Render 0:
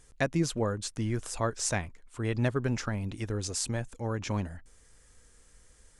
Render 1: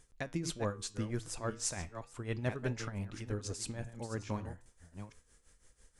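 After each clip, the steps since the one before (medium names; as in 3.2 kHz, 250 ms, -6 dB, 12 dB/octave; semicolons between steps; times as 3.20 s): chunks repeated in reverse 427 ms, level -10 dB; tremolo 6 Hz, depth 76%; flange 0.35 Hz, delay 7.6 ms, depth 7.1 ms, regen -83%; trim +1 dB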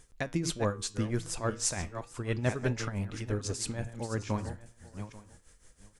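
delay 838 ms -19.5 dB; trim +5.5 dB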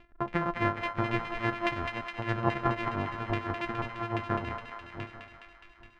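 sorted samples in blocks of 128 samples; LFO low-pass saw down 3.6 Hz 920–2700 Hz; thinning echo 208 ms, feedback 79%, high-pass 810 Hz, level -5 dB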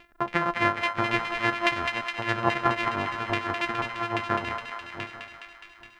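tilt EQ +2.5 dB/octave; trim +5.5 dB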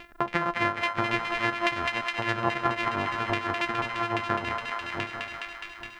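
compression 2:1, threshold -38 dBFS, peak gain reduction 11.5 dB; trim +8 dB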